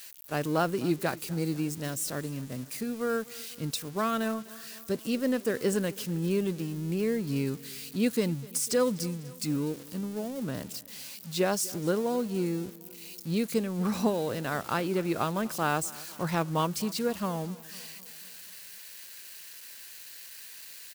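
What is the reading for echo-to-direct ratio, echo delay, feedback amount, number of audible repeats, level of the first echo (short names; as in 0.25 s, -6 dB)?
-19.0 dB, 0.249 s, 58%, 3, -21.0 dB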